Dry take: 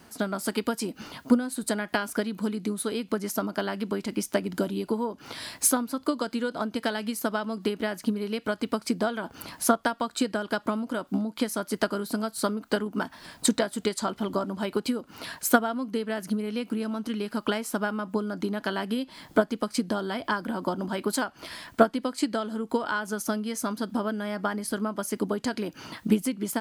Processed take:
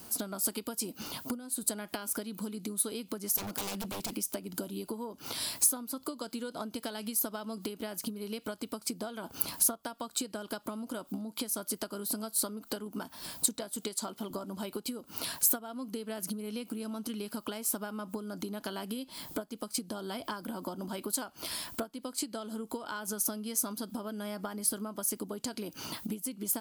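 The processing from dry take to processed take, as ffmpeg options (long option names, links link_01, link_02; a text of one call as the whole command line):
ffmpeg -i in.wav -filter_complex "[0:a]asettb=1/sr,asplit=3[link_01][link_02][link_03];[link_01]atrim=end=3.364[link_04];[link_02]atrim=start=3.36:end=4.13,asetpts=PTS-STARTPTS,afade=type=in:duration=0.004:curve=qsin,afade=type=out:start_time=0.766:duration=0.004:curve=qsin,aeval=exprs='0.0282*(abs(mod(val(0)/0.0282+3,4)-2)-1)':channel_layout=same[link_05];[link_03]atrim=start=4.126[link_06];[link_04][link_05]acrossfade=duration=0.004:curve1=hsin:curve2=qsin[link_07];[link_07][link_06]acrossfade=duration=0.004:curve1=qsin:curve2=hsin,asettb=1/sr,asplit=3[link_08][link_09][link_10];[link_08]atrim=end=13.764[link_11];[link_09]atrim=start=13.76:end=14.31,asetpts=PTS-STARTPTS,afade=type=in:duration=0.004:curve=qsin,afade=type=out:start_time=0.546:duration=0.004:curve=qsin,highpass=150[link_12];[link_10]atrim=start=14.306[link_13];[link_11][link_12]acrossfade=duration=0.004:curve1=hsin:curve2=qsin[link_14];[link_14][link_13]acrossfade=duration=0.004:curve1=qsin:curve2=hsin,equalizer=frequency=1800:width_type=o:width=0.54:gain=-7.5,acompressor=threshold=-35dB:ratio=6,aemphasis=mode=production:type=50fm" out.wav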